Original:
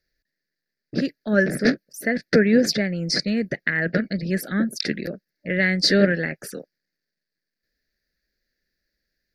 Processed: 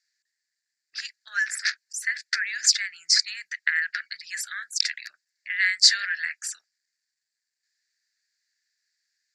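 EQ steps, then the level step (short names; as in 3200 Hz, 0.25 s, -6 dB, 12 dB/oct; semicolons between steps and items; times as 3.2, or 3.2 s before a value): inverse Chebyshev high-pass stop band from 560 Hz, stop band 50 dB; synth low-pass 7400 Hz, resonance Q 7; 0.0 dB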